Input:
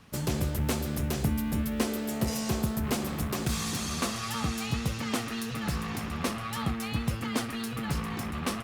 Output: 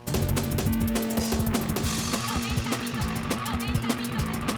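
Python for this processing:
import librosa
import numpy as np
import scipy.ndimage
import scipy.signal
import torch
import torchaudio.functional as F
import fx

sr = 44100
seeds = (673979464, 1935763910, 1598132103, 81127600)

y = fx.stretch_grains(x, sr, factor=0.53, grain_ms=42.0)
y = fx.dmg_buzz(y, sr, base_hz=120.0, harmonics=9, level_db=-51.0, tilt_db=-4, odd_only=False)
y = F.gain(torch.from_numpy(y), 5.0).numpy()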